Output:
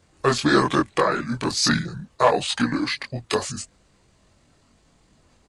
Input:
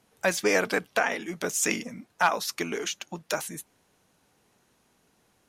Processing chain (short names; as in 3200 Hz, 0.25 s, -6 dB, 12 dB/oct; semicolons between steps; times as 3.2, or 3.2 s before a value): pitch shift -6 st; chorus voices 6, 0.78 Hz, delay 23 ms, depth 2.8 ms; low shelf 110 Hz +9.5 dB; gain +8.5 dB